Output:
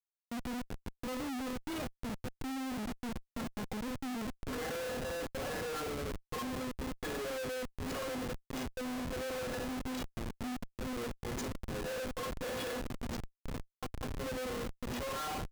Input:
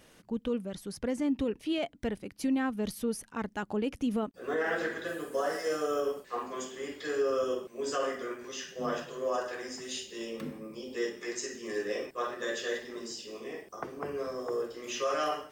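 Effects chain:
stiff-string resonator 250 Hz, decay 0.23 s, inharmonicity 0.008
downsampling to 16,000 Hz
on a send at −16 dB: convolution reverb RT60 0.40 s, pre-delay 35 ms
on the sum: comparator with hysteresis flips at −49 dBFS
level +7.5 dB

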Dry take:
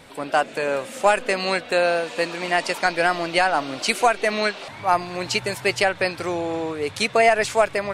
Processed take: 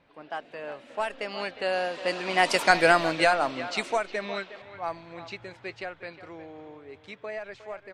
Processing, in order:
source passing by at 0:02.72, 21 m/s, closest 7.7 metres
far-end echo of a speakerphone 360 ms, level −13 dB
low-pass that shuts in the quiet parts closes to 2,800 Hz, open at −20.5 dBFS
level +1.5 dB

